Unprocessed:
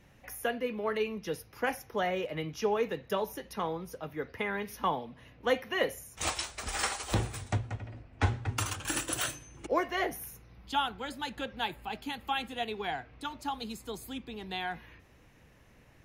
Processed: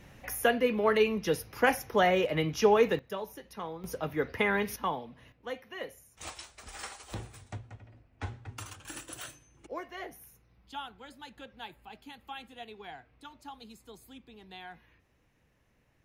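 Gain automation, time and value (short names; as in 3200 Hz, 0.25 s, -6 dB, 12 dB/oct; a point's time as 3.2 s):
+6.5 dB
from 2.99 s -5.5 dB
from 3.84 s +6 dB
from 4.76 s -2 dB
from 5.32 s -10.5 dB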